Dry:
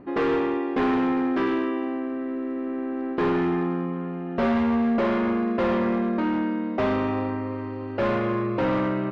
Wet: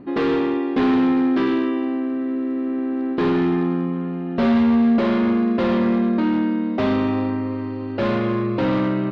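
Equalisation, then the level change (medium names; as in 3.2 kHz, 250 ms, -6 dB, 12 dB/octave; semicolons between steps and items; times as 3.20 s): graphic EQ 125/250/4000 Hz +4/+6/+8 dB; 0.0 dB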